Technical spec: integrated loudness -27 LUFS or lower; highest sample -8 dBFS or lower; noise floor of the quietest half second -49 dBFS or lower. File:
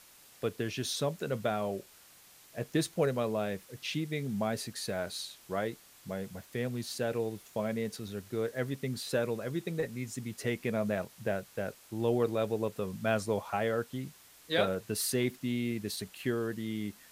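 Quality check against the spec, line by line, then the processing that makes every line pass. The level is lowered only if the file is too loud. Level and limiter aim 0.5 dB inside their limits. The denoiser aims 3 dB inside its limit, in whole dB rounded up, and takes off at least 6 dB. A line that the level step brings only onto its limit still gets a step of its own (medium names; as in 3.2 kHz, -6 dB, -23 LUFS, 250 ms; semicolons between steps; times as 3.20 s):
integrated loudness -34.5 LUFS: pass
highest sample -14.0 dBFS: pass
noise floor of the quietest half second -58 dBFS: pass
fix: none needed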